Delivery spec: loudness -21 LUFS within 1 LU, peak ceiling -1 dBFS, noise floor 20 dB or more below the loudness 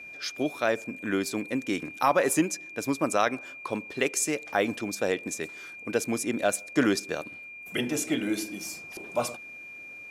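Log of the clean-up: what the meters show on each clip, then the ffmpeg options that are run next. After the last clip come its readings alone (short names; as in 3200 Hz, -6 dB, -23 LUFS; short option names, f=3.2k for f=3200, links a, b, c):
steady tone 2400 Hz; tone level -41 dBFS; loudness -29.0 LUFS; peak -10.5 dBFS; loudness target -21.0 LUFS
-> -af "bandreject=f=2.4k:w=30"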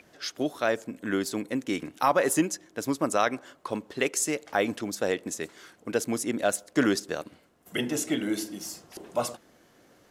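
steady tone none; loudness -29.0 LUFS; peak -10.5 dBFS; loudness target -21.0 LUFS
-> -af "volume=8dB"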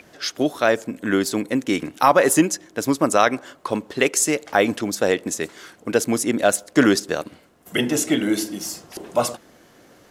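loudness -21.0 LUFS; peak -2.5 dBFS; noise floor -53 dBFS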